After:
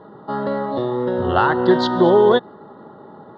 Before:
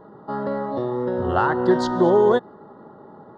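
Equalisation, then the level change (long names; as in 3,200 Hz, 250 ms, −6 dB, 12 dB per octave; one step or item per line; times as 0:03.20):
high-pass filter 57 Hz
low-pass with resonance 3,700 Hz, resonance Q 2.5
+3.0 dB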